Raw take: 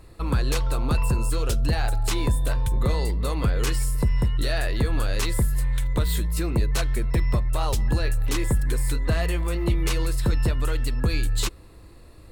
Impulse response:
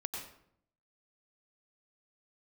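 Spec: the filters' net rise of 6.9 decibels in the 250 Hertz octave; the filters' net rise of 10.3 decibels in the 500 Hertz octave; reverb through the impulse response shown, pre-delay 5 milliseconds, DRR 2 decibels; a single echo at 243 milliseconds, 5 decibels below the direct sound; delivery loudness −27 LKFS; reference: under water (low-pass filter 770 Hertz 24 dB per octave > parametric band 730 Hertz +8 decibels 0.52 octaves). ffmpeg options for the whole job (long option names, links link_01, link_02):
-filter_complex "[0:a]equalizer=frequency=250:width_type=o:gain=6.5,equalizer=frequency=500:width_type=o:gain=8.5,aecho=1:1:243:0.562,asplit=2[link_01][link_02];[1:a]atrim=start_sample=2205,adelay=5[link_03];[link_02][link_03]afir=irnorm=-1:irlink=0,volume=-2.5dB[link_04];[link_01][link_04]amix=inputs=2:normalize=0,lowpass=frequency=770:width=0.5412,lowpass=frequency=770:width=1.3066,equalizer=frequency=730:width_type=o:width=0.52:gain=8,volume=-7dB"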